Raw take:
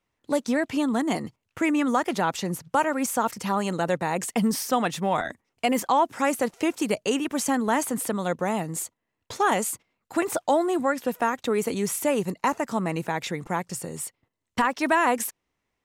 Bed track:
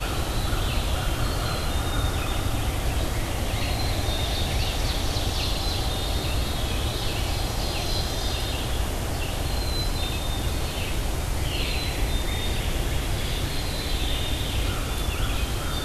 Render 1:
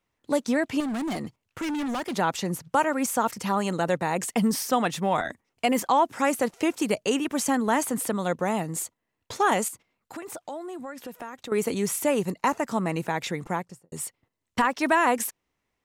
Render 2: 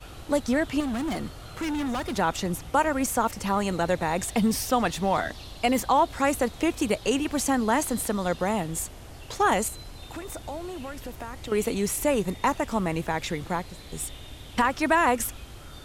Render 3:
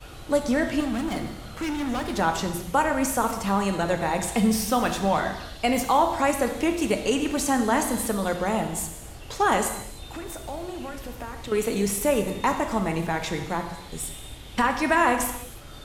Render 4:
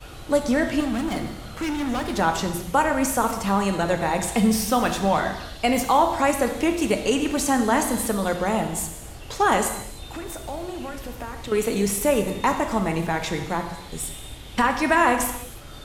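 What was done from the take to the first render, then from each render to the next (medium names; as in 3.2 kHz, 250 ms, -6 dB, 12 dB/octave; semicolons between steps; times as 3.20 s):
0.80–2.15 s: overload inside the chain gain 27 dB; 9.68–11.52 s: compression 3:1, threshold -38 dBFS; 13.46–13.92 s: studio fade out
add bed track -16 dB
gated-style reverb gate 350 ms falling, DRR 4.5 dB
trim +2 dB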